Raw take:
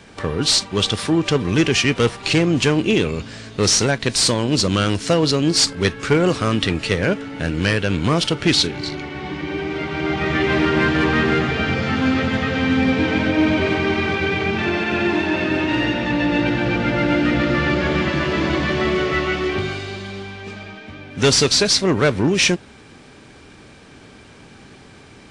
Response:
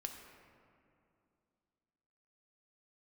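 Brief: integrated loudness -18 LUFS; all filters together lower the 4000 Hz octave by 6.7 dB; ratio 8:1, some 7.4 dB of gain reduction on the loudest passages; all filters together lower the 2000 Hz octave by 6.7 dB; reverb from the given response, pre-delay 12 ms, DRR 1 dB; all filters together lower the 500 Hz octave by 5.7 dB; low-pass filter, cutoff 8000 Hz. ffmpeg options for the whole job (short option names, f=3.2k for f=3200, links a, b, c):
-filter_complex "[0:a]lowpass=8k,equalizer=f=500:t=o:g=-7.5,equalizer=f=2k:t=o:g=-6.5,equalizer=f=4k:t=o:g=-6.5,acompressor=threshold=-23dB:ratio=8,asplit=2[a][b];[1:a]atrim=start_sample=2205,adelay=12[c];[b][c]afir=irnorm=-1:irlink=0,volume=1dB[d];[a][d]amix=inputs=2:normalize=0,volume=7dB"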